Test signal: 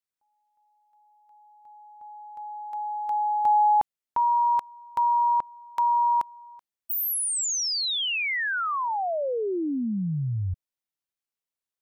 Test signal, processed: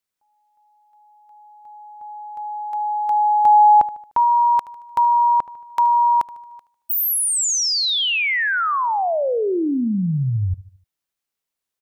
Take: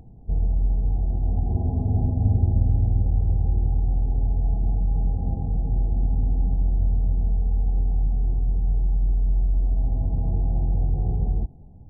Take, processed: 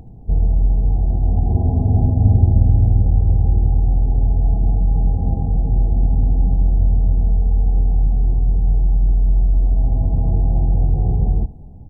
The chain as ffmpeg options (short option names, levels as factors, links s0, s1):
-af "aecho=1:1:75|150|225|300:0.126|0.0604|0.029|0.0139,volume=2.24"